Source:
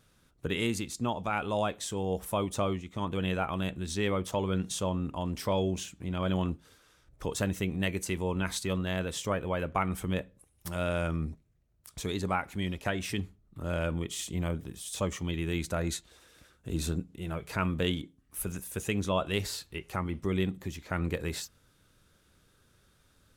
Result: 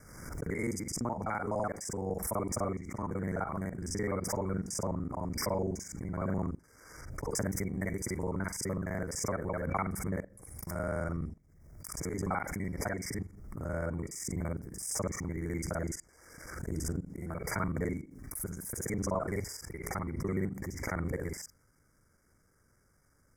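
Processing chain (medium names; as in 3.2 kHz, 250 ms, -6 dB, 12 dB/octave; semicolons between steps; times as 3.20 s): time reversed locally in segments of 42 ms; FFT band-reject 2.3–4.8 kHz; swell ahead of each attack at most 49 dB/s; trim -3.5 dB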